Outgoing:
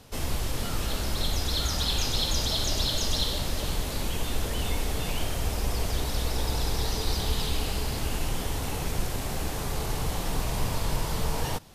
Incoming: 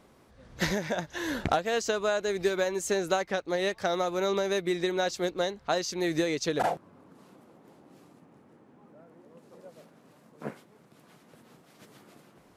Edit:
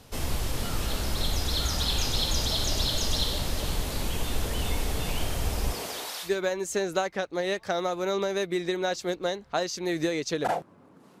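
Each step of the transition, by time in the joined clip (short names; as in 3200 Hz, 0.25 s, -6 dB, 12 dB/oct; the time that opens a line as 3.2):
outgoing
5.72–6.32 HPF 180 Hz -> 1500 Hz
6.27 switch to incoming from 2.42 s, crossfade 0.10 s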